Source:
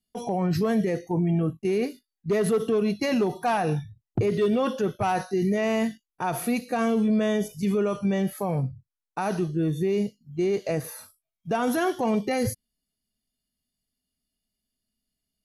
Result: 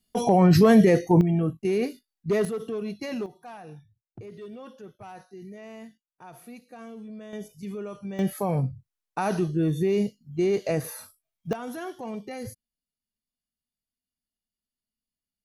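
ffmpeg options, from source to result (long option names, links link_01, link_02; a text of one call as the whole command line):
ffmpeg -i in.wav -af "asetnsamples=nb_out_samples=441:pad=0,asendcmd='1.21 volume volume 0dB;2.45 volume volume -8dB;3.26 volume volume -18.5dB;7.33 volume volume -11dB;8.19 volume volume 1dB;11.53 volume volume -11dB',volume=8dB" out.wav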